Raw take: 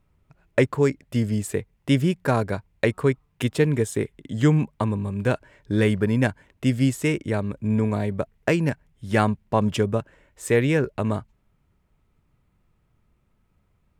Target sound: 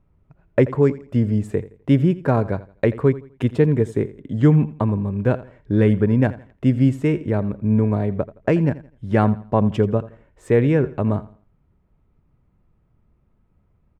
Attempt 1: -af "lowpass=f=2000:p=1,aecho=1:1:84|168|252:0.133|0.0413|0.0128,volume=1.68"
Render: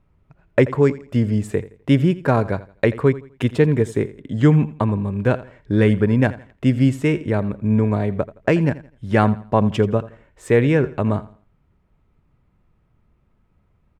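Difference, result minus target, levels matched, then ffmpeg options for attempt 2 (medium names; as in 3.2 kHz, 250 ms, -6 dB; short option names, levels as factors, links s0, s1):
2 kHz band +4.5 dB
-af "lowpass=f=800:p=1,aecho=1:1:84|168|252:0.133|0.0413|0.0128,volume=1.68"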